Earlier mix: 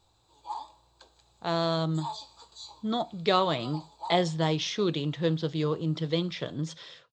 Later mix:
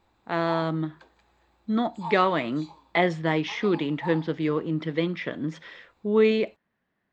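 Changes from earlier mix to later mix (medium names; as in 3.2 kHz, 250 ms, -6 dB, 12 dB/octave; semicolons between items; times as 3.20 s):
speech: entry -1.15 s; master: add ten-band graphic EQ 125 Hz -7 dB, 250 Hz +9 dB, 2 kHz +12 dB, 4 kHz -8 dB, 8 kHz -11 dB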